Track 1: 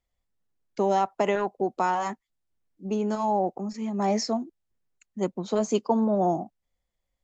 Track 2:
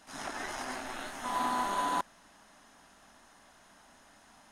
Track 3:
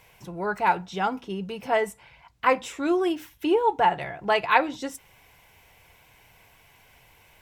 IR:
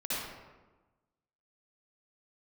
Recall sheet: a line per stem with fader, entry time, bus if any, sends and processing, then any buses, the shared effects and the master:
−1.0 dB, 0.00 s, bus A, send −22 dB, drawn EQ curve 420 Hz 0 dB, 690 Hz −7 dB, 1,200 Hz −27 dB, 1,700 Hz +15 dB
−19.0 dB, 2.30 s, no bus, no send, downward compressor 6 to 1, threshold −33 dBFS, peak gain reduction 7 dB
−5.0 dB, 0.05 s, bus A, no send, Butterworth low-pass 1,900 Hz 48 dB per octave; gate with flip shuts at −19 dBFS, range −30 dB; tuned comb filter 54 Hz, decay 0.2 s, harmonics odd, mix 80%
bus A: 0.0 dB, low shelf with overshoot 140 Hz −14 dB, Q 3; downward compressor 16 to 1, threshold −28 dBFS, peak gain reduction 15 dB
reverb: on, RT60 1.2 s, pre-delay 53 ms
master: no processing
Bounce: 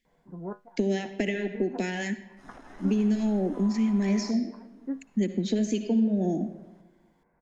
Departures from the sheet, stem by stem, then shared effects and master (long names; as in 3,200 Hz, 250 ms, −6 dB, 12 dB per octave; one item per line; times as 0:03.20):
stem 2 −19.0 dB → −11.0 dB
master: extra spectral tilt −3 dB per octave